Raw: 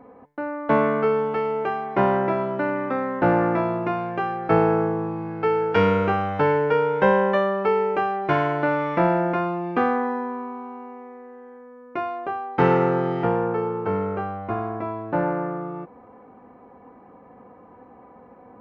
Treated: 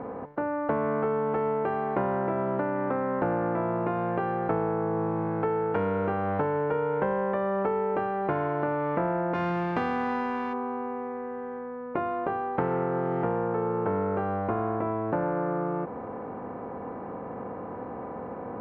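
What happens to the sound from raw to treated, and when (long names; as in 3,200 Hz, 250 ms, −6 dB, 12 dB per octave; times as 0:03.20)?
0:09.33–0:10.52: spectral envelope flattened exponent 0.3
whole clip: compressor on every frequency bin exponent 0.6; low-pass filter 1,400 Hz 12 dB per octave; downward compressor, threshold −21 dBFS; level −3 dB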